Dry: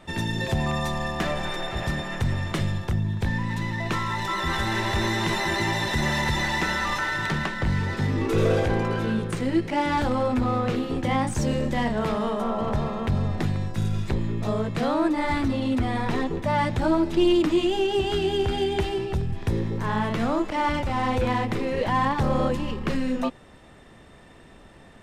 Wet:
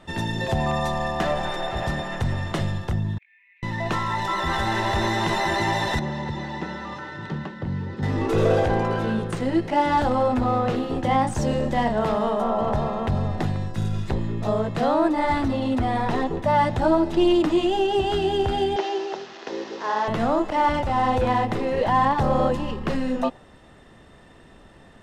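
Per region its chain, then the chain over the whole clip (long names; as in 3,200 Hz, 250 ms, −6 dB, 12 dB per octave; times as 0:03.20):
0:03.18–0:03.63: flat-topped band-pass 2,300 Hz, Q 7.5 + downward compressor 2 to 1, threshold −53 dBFS
0:05.99–0:08.03: band-pass filter 110–3,500 Hz + parametric band 1,900 Hz −11.5 dB 3 octaves + notch filter 680 Hz, Q 9.9
0:18.76–0:20.08: linear delta modulator 32 kbit/s, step −33 dBFS + high-pass filter 320 Hz 24 dB per octave
whole clip: high-shelf EQ 11,000 Hz −6.5 dB; notch filter 2,300 Hz, Q 13; dynamic equaliser 730 Hz, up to +7 dB, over −41 dBFS, Q 1.5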